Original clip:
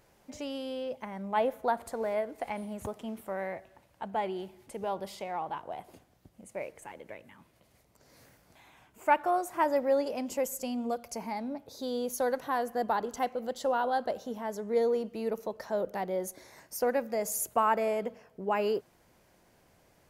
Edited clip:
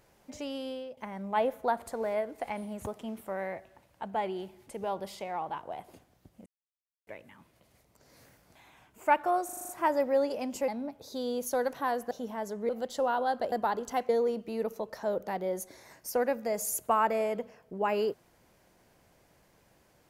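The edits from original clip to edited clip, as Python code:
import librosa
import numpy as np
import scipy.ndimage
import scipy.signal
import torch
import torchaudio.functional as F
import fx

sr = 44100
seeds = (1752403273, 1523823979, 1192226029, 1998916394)

y = fx.edit(x, sr, fx.fade_out_to(start_s=0.68, length_s=0.29, floor_db=-13.0),
    fx.silence(start_s=6.46, length_s=0.61),
    fx.stutter(start_s=9.45, slice_s=0.04, count=7),
    fx.cut(start_s=10.44, length_s=0.91),
    fx.swap(start_s=12.78, length_s=0.57, other_s=14.18, other_length_s=0.58), tone=tone)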